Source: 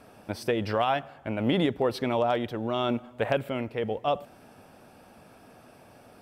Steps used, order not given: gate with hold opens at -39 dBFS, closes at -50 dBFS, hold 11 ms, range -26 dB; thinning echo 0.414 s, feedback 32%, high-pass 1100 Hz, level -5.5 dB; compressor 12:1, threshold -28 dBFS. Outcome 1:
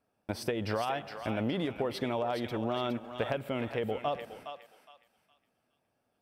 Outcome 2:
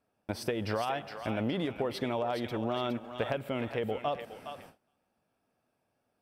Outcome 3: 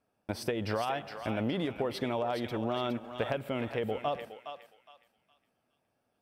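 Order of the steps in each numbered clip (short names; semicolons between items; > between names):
gate with hold > compressor > thinning echo; compressor > thinning echo > gate with hold; compressor > gate with hold > thinning echo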